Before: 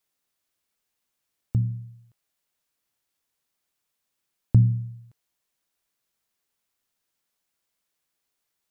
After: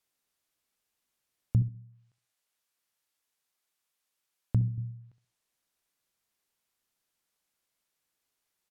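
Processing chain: 1.62–4.78 s: bass shelf 390 Hz -8.5 dB; feedback delay 66 ms, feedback 28%, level -13.5 dB; low-pass that closes with the level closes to 540 Hz, closed at -31 dBFS; endings held to a fixed fall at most 320 dB/s; trim -1.5 dB

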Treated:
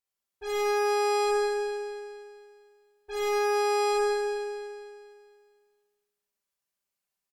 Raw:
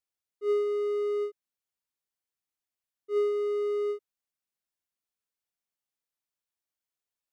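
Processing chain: peaking EQ 3.6 kHz -3.5 dB 0.24 oct; comb 5.1 ms, depth 49%; saturation -33 dBFS, distortion -8 dB; Chebyshev shaper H 5 -44 dB, 6 -8 dB, 8 -8 dB, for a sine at -33 dBFS; on a send: echo whose repeats swap between lows and highs 115 ms, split 1.5 kHz, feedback 68%, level -6 dB; on the sum: Schroeder reverb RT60 1.1 s, combs from 30 ms, DRR -4.5 dB; trim -3 dB

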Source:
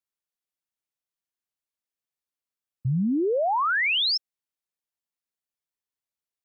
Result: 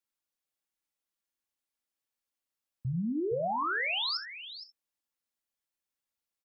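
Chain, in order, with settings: comb 3.6 ms, depth 36%; peak limiter -28.5 dBFS, peak gain reduction 11 dB; delay 465 ms -12.5 dB; gated-style reverb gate 90 ms flat, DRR 9.5 dB

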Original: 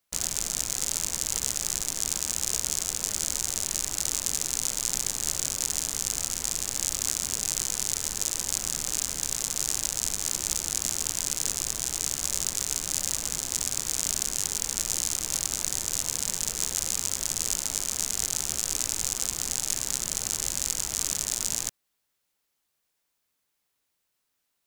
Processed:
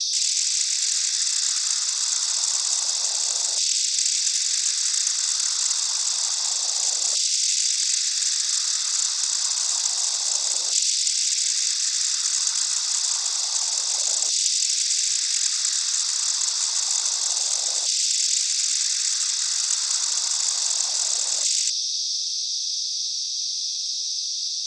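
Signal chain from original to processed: tone controls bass -7 dB, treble +7 dB; whistle 4.8 kHz -25 dBFS; LFO high-pass saw down 0.28 Hz 610–2900 Hz; noise-vocoded speech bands 16

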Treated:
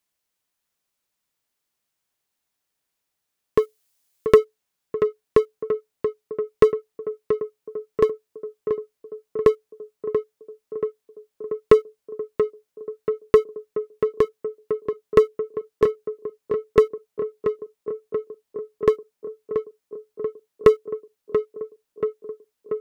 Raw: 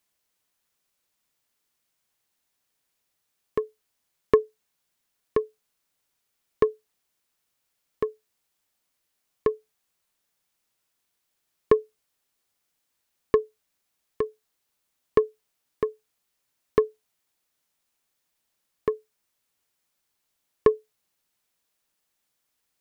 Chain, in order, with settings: 3.58–4.38 s: treble shelf 3 kHz +11.5 dB; waveshaping leveller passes 2; tape echo 683 ms, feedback 83%, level -6 dB, low-pass 1.4 kHz; trim +1 dB

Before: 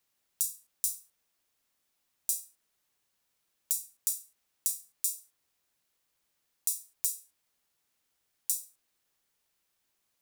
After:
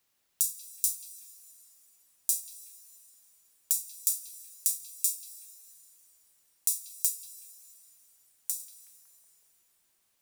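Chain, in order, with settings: 7.08–8.60 s: compression 2:1, threshold -35 dBFS, peak gain reduction 6 dB; repeats whose band climbs or falls 186 ms, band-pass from 3.4 kHz, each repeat -0.7 oct, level -9.5 dB; reverberation RT60 4.5 s, pre-delay 138 ms, DRR 15 dB; trim +3 dB

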